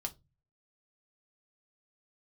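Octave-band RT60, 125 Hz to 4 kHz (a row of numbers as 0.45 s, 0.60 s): 0.65 s, 0.40 s, 0.25 s, 0.20 s, 0.15 s, 0.20 s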